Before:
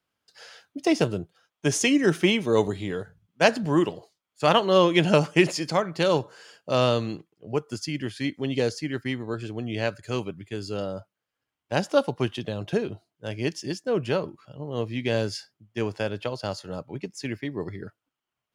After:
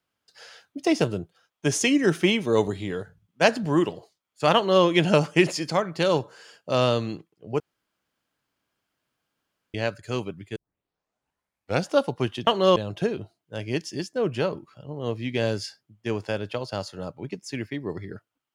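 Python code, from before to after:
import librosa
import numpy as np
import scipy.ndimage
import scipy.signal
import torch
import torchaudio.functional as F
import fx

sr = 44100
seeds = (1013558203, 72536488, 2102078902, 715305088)

y = fx.edit(x, sr, fx.duplicate(start_s=4.55, length_s=0.29, to_s=12.47),
    fx.room_tone_fill(start_s=7.6, length_s=2.14),
    fx.tape_start(start_s=10.56, length_s=1.34), tone=tone)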